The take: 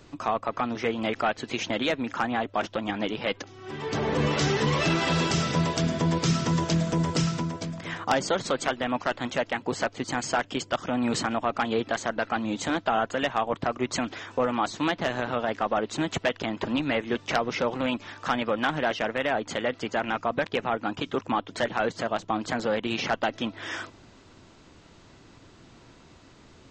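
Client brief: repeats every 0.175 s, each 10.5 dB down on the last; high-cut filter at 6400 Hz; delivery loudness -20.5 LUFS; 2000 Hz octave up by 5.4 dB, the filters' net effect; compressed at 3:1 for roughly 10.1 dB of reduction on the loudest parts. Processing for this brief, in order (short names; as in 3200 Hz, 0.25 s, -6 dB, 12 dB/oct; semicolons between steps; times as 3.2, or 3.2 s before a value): LPF 6400 Hz; bell 2000 Hz +7 dB; compressor 3:1, threshold -33 dBFS; feedback echo 0.175 s, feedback 30%, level -10.5 dB; gain +13.5 dB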